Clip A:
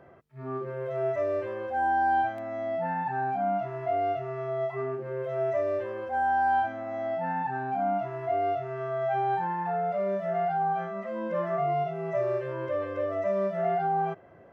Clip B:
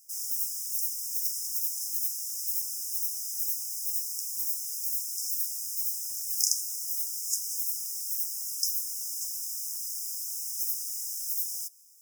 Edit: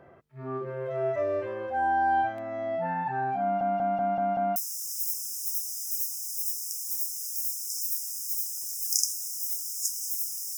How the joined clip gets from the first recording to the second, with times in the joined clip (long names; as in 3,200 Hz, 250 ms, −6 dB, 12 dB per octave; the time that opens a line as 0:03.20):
clip A
0:03.42: stutter in place 0.19 s, 6 plays
0:04.56: continue with clip B from 0:02.04